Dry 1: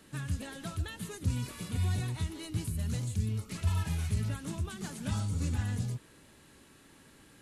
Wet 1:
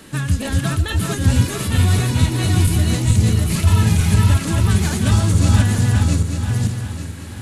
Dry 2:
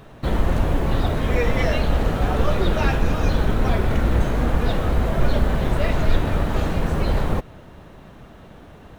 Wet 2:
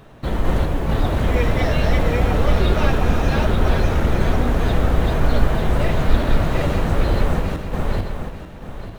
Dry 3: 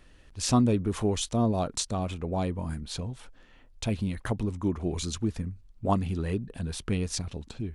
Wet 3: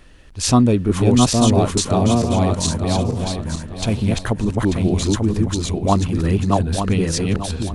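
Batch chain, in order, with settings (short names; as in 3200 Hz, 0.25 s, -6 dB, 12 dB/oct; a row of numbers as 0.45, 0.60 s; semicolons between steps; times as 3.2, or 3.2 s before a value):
regenerating reverse delay 0.445 s, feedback 51%, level -1 dB; normalise peaks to -2 dBFS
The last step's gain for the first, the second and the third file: +15.5, -1.0, +8.5 dB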